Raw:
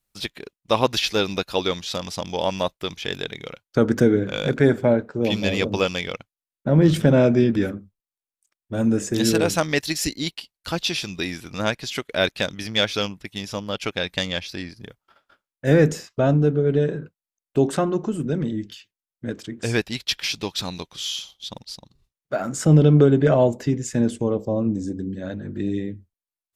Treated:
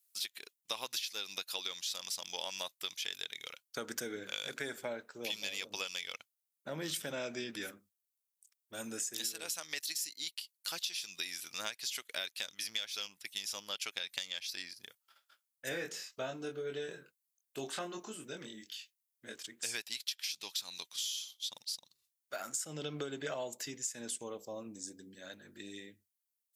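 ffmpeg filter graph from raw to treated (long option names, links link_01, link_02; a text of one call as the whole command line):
ffmpeg -i in.wav -filter_complex "[0:a]asettb=1/sr,asplit=3[link_01][link_02][link_03];[link_01]atrim=end=15.694[link_04];[link_02]atrim=start=15.69:end=19.43,asetpts=PTS-STARTPTS,afade=type=in:duration=0.004:curve=qsin,afade=type=out:start_time=3.736:duration=0.004:curve=qsin,acrossover=split=4200[link_05][link_06];[link_06]acompressor=threshold=-53dB:ratio=4:attack=1:release=60[link_07];[link_05][link_07]amix=inputs=2:normalize=0,asplit=2[link_08][link_09];[link_09]adelay=23,volume=-4dB[link_10];[link_08][link_10]amix=inputs=2:normalize=0,atrim=end_sample=164934[link_11];[link_03]atrim=start=19.426[link_12];[link_04][link_11]acrossfade=duration=0.004:curve1=hsin:curve2=qsin[link_13];[link_13][link_12]acrossfade=duration=0.004:curve1=qsin:curve2=hsin,aderivative,acompressor=threshold=-38dB:ratio=16,volume=3.5dB" out.wav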